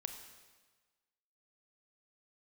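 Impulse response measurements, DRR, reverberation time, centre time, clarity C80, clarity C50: 6.0 dB, 1.4 s, 25 ms, 8.5 dB, 7.5 dB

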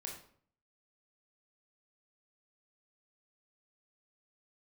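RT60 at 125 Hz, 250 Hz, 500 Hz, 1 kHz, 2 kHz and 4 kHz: 0.70, 0.65, 0.60, 0.55, 0.45, 0.40 s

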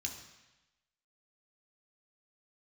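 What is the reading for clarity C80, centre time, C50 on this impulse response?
9.0 dB, 26 ms, 7.0 dB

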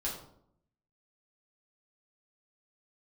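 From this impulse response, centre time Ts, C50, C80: 36 ms, 5.0 dB, 8.5 dB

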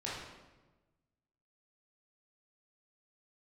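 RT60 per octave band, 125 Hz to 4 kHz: 1.6, 1.4, 1.3, 1.1, 0.95, 0.85 s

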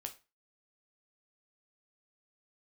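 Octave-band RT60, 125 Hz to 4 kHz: 0.35, 0.30, 0.30, 0.30, 0.30, 0.25 s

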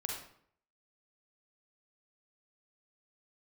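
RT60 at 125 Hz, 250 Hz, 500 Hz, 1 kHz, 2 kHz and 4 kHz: 0.70, 0.65, 0.65, 0.60, 0.55, 0.45 s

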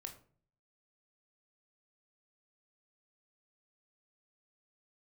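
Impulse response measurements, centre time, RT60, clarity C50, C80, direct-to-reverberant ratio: 12 ms, 0.45 s, 11.0 dB, 15.5 dB, 4.0 dB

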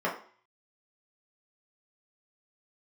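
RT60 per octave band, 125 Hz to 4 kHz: 0.30, 0.45, 0.45, 0.50, 0.50, 0.45 s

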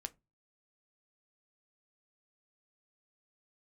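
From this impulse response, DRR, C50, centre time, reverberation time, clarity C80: 9.5 dB, 24.5 dB, 3 ms, 0.25 s, 33.0 dB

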